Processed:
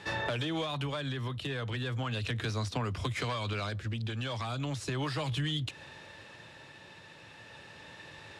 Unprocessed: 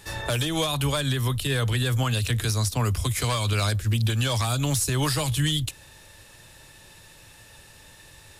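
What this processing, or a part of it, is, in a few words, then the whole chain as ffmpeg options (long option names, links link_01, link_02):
AM radio: -af "highpass=140,lowpass=3300,acompressor=threshold=-33dB:ratio=6,asoftclip=type=tanh:threshold=-27dB,tremolo=f=0.36:d=0.29,volume=4dB"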